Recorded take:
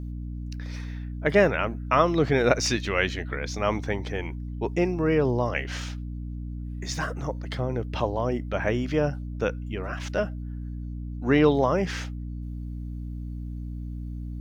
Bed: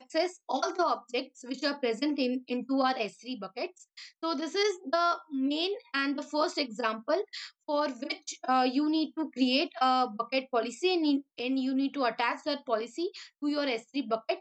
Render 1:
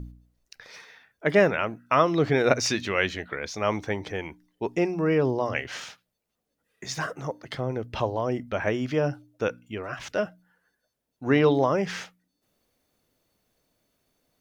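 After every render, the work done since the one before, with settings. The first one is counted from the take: de-hum 60 Hz, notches 5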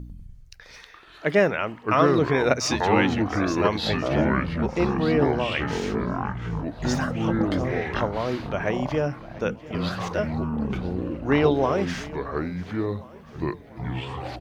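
feedback echo 0.693 s, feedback 58%, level -19.5 dB; echoes that change speed 98 ms, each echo -6 st, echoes 3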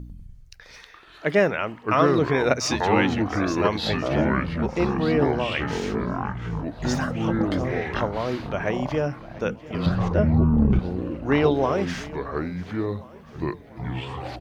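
9.86–10.79 tilt -3.5 dB/oct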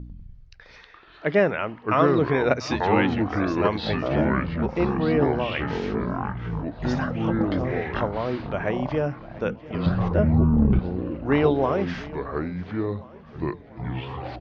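LPF 5200 Hz 24 dB/oct; high shelf 3600 Hz -7.5 dB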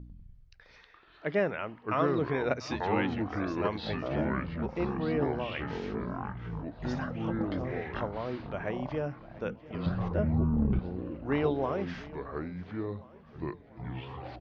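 gain -8.5 dB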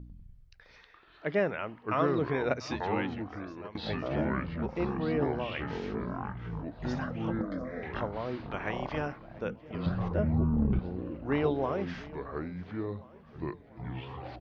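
2.65–3.75 fade out, to -17 dB; 7.41–7.83 fixed phaser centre 560 Hz, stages 8; 8.5–9.16 spectral limiter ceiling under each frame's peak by 14 dB

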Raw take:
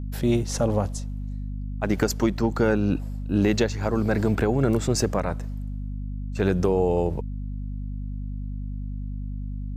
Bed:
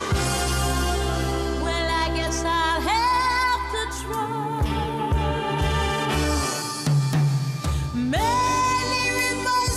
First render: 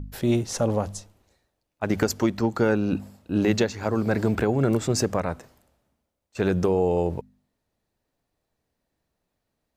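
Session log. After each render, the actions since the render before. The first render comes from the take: de-hum 50 Hz, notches 5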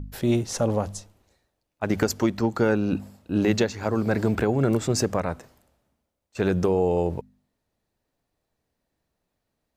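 nothing audible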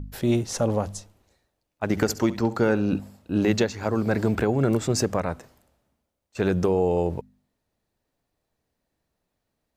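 1.9–3 flutter echo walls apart 11.7 m, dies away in 0.27 s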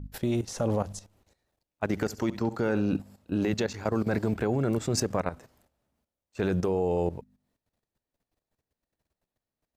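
level quantiser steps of 13 dB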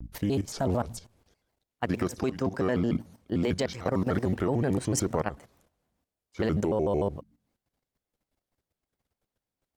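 shaped vibrato square 6.7 Hz, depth 250 cents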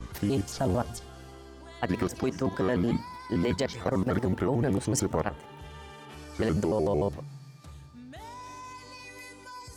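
add bed -22.5 dB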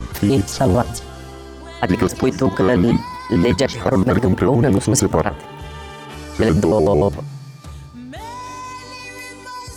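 gain +12 dB; limiter -2 dBFS, peak gain reduction 1.5 dB

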